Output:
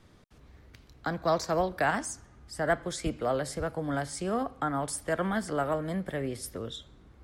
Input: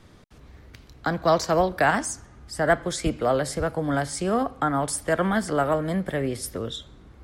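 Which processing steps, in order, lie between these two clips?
1.17–1.58 notch 3000 Hz, Q 11; gain -6.5 dB

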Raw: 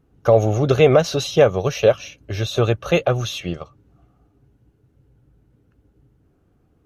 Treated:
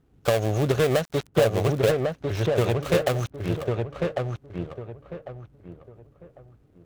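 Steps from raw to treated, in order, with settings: switching dead time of 0.22 ms; compressor, threshold -15 dBFS, peak gain reduction 7.5 dB; on a send: darkening echo 1.099 s, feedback 29%, low-pass 1600 Hz, level -3 dB; on the sum: gain -2.5 dB

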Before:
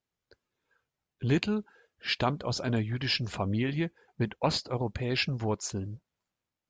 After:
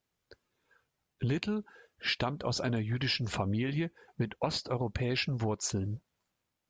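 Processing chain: compressor 6:1, threshold -33 dBFS, peak gain reduction 11.5 dB; gain +4.5 dB

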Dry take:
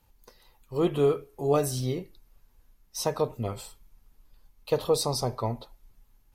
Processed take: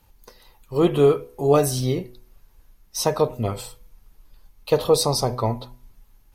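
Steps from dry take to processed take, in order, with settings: notch 7400 Hz, Q 25; de-hum 123.2 Hz, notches 8; gain +7 dB

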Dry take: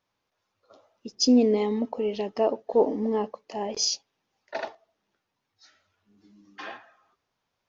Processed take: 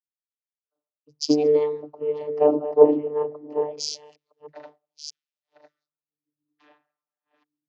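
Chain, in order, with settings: reverse delay 0.637 s, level -6 dB; vocoder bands 32, saw 149 Hz; three-band expander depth 100%; gain -1 dB

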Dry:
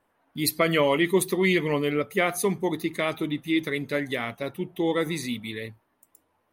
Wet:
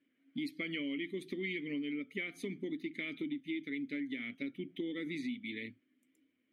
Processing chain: vowel filter i; compressor 6:1, threshold -44 dBFS, peak gain reduction 13.5 dB; gain +7.5 dB

